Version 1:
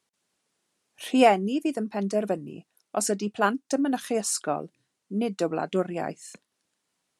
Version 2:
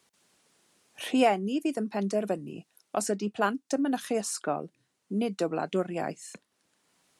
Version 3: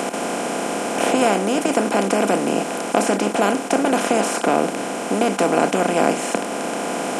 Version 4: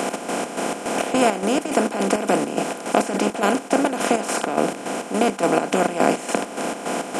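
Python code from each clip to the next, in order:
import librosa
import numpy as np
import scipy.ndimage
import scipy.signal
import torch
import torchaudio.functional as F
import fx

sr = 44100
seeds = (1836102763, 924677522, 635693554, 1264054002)

y1 = fx.band_squash(x, sr, depth_pct=40)
y1 = F.gain(torch.from_numpy(y1), -2.5).numpy()
y2 = fx.bin_compress(y1, sr, power=0.2)
y2 = F.gain(torch.from_numpy(y2), 1.0).numpy()
y3 = fx.chopper(y2, sr, hz=3.5, depth_pct=60, duty_pct=55)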